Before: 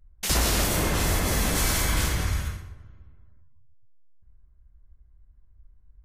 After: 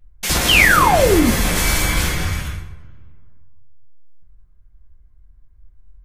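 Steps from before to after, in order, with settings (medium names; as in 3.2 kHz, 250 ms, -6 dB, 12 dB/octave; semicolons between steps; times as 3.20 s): painted sound fall, 0.48–1.31 s, 210–3300 Hz -20 dBFS; on a send: peaking EQ 2.5 kHz +9 dB 1.4 oct + reverberation RT60 0.30 s, pre-delay 6 ms, DRR 0.5 dB; on the sum: trim +4.5 dB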